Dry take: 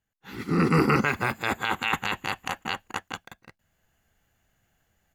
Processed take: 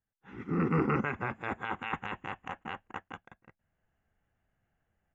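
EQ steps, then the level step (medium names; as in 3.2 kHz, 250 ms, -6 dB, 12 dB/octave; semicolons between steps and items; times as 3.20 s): boxcar filter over 10 samples; distance through air 63 m; -6.5 dB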